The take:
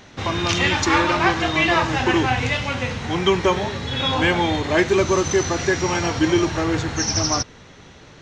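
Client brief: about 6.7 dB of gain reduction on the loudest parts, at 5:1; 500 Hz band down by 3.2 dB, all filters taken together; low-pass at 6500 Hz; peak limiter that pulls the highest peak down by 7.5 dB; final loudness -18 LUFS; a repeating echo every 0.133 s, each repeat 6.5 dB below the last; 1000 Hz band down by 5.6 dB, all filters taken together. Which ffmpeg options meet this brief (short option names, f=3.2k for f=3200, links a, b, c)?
-af "lowpass=6.5k,equalizer=f=500:t=o:g=-3.5,equalizer=f=1k:t=o:g=-6,acompressor=threshold=-23dB:ratio=5,alimiter=limit=-20dB:level=0:latency=1,aecho=1:1:133|266|399|532|665|798:0.473|0.222|0.105|0.0491|0.0231|0.0109,volume=9.5dB"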